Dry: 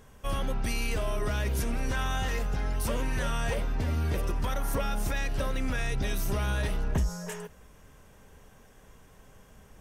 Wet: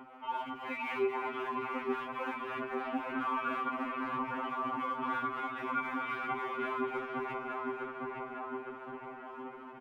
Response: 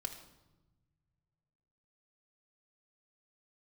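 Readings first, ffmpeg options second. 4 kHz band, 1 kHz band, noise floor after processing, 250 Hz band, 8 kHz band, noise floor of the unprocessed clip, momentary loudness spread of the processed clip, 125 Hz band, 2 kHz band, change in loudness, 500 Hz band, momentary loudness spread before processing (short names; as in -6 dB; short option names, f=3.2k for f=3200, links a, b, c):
-11.0 dB, +4.0 dB, -48 dBFS, -3.0 dB, under -30 dB, -55 dBFS, 8 LU, -25.0 dB, -2.0 dB, -5.0 dB, -2.0 dB, 3 LU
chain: -filter_complex "[0:a]highpass=f=240:t=q:w=0.5412,highpass=f=240:t=q:w=1.307,lowpass=f=3.1k:t=q:w=0.5176,lowpass=f=3.1k:t=q:w=0.7071,lowpass=f=3.1k:t=q:w=1.932,afreqshift=-230,highpass=72,bandreject=f=1.7k:w=16,aecho=1:1:220|363|456|516.4|555.6:0.631|0.398|0.251|0.158|0.1,asplit=2[a][b];[1:a]atrim=start_sample=2205,adelay=79[c];[b][c]afir=irnorm=-1:irlink=0,volume=-13.5dB[d];[a][d]amix=inputs=2:normalize=0,aphaser=in_gain=1:out_gain=1:delay=4.7:decay=0.71:speed=1.9:type=sinusoidal,equalizer=f=125:t=o:w=1:g=-11,equalizer=f=250:t=o:w=1:g=4,equalizer=f=1k:t=o:w=1:g=10,asplit=2[e][f];[f]adelay=859,lowpass=f=2.1k:p=1,volume=-6.5dB,asplit=2[g][h];[h]adelay=859,lowpass=f=2.1k:p=1,volume=0.46,asplit=2[i][j];[j]adelay=859,lowpass=f=2.1k:p=1,volume=0.46,asplit=2[k][l];[l]adelay=859,lowpass=f=2.1k:p=1,volume=0.46,asplit=2[m][n];[n]adelay=859,lowpass=f=2.1k:p=1,volume=0.46[o];[g][i][k][m][o]amix=inputs=5:normalize=0[p];[e][p]amix=inputs=2:normalize=0,acompressor=threshold=-36dB:ratio=2.5,afftfilt=real='re*2.45*eq(mod(b,6),0)':imag='im*2.45*eq(mod(b,6),0)':win_size=2048:overlap=0.75,volume=2dB"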